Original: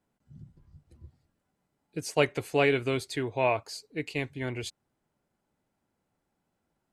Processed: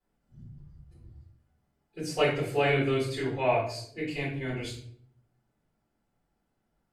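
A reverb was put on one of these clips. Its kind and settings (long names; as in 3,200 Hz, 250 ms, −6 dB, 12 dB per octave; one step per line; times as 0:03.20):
rectangular room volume 82 cubic metres, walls mixed, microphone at 4.1 metres
level −15 dB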